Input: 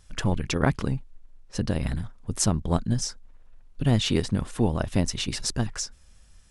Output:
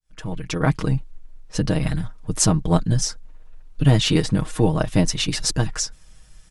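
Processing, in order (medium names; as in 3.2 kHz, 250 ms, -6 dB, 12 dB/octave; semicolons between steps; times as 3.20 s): fade-in on the opening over 0.99 s; 4.66–5.42 s: expander -30 dBFS; comb 6.4 ms, depth 67%; trim +4.5 dB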